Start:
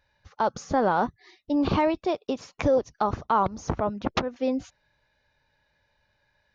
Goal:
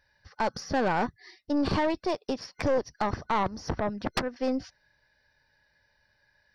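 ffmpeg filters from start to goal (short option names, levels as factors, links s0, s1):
-af "superequalizer=11b=2:14b=2.51:15b=0.316,aeval=exprs='(tanh(10*val(0)+0.45)-tanh(0.45))/10':c=same"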